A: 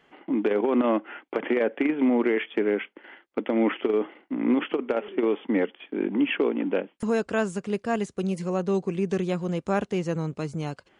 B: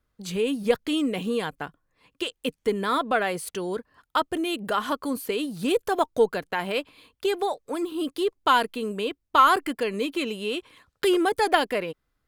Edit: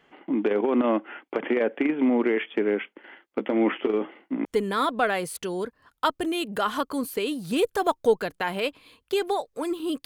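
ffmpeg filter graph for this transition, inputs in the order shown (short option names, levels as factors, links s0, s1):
-filter_complex "[0:a]asettb=1/sr,asplit=3[s0][s1][s2];[s0]atrim=end=3.324[s3];[s1]atrim=start=3.32:end=4.45,asetpts=PTS-STARTPTS,afade=t=in:d=0.004:c=qsin,afade=t=out:st=1.126:d=0.004:c=qsin,asplit=2[s4][s5];[s5]adelay=15,volume=0.355[s6];[s4][s6]amix=inputs=2:normalize=0,atrim=end_sample=49833[s7];[s2]atrim=start=4.446[s8];[s3][s7]acrossfade=d=0.004:c1=hsin:c2=qsin[s9];[s9][s8]acrossfade=d=0.004:c1=qsin:c2=hsin,apad=whole_dur=10.05,atrim=end=10.05,atrim=end=4.452[s10];[1:a]atrim=start=2.568:end=8.17[s11];[s10][s11]acrossfade=d=0.004:c1=hsin:c2=hsin"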